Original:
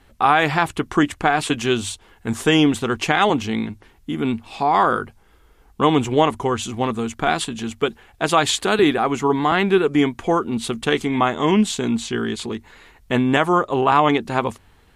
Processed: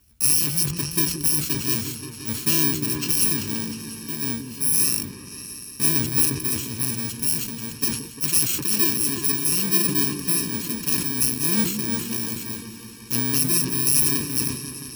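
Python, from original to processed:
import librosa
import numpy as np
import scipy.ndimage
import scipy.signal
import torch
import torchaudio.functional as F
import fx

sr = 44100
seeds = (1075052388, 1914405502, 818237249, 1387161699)

y = fx.bit_reversed(x, sr, seeds[0], block=64)
y = scipy.signal.sosfilt(scipy.signal.butter(2, 47.0, 'highpass', fs=sr, output='sos'), y)
y = fx.peak_eq(y, sr, hz=660.0, db=-14.0, octaves=1.7)
y = fx.echo_opening(y, sr, ms=175, hz=400, octaves=2, feedback_pct=70, wet_db=-6)
y = fx.sustainer(y, sr, db_per_s=80.0)
y = F.gain(torch.from_numpy(y), -3.5).numpy()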